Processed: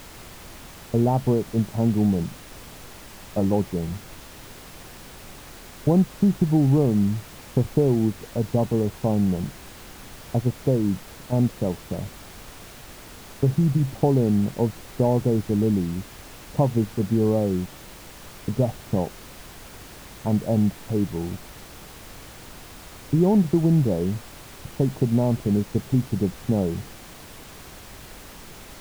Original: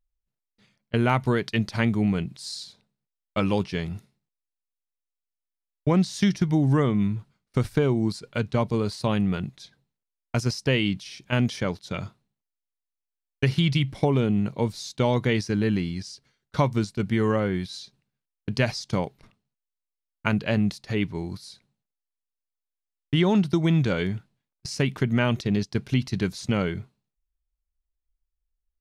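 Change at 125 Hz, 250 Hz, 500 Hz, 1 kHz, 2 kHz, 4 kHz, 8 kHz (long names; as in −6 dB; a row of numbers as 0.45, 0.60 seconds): +2.5, +2.5, +2.5, −1.0, −11.0, −8.0, +1.0 decibels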